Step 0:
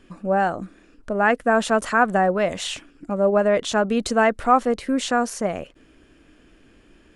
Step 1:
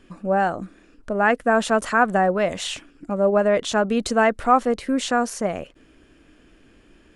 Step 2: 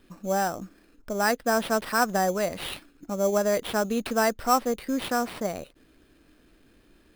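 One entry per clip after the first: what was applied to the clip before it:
no processing that can be heard
sample-rate reduction 6,700 Hz, jitter 0%; level −5.5 dB

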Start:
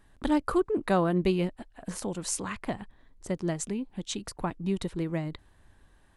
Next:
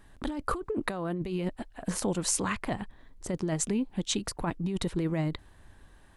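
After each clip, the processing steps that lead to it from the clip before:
compressor whose output falls as the input rises −31 dBFS, ratio −1
level +1.5 dB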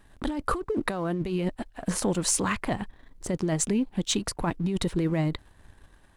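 leveller curve on the samples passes 1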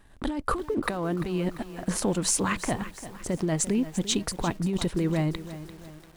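feedback echo at a low word length 344 ms, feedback 55%, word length 7 bits, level −13 dB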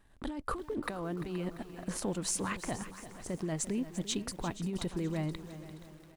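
repeating echo 475 ms, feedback 38%, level −16 dB
level −8.5 dB

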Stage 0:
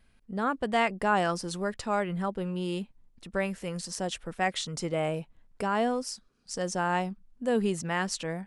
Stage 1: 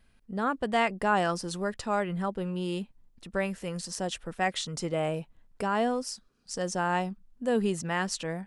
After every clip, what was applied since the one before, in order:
notch filter 2,200 Hz, Q 27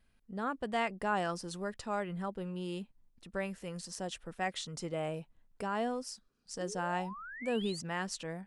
sound drawn into the spectrogram rise, 0:06.60–0:07.81, 320–5,000 Hz −39 dBFS
level −7 dB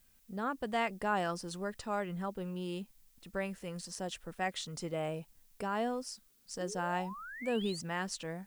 background noise blue −69 dBFS

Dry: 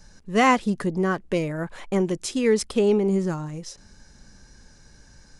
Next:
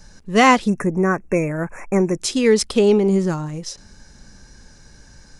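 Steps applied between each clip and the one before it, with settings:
time-frequency box erased 0:00.68–0:02.20, 2,700–5,400 Hz
dynamic equaliser 4,500 Hz, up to +4 dB, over −45 dBFS, Q 1.1
level +5 dB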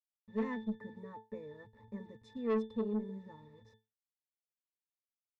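hold until the input has moved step −30 dBFS
resonances in every octave A, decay 0.24 s
tube saturation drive 21 dB, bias 0.25
level −6.5 dB

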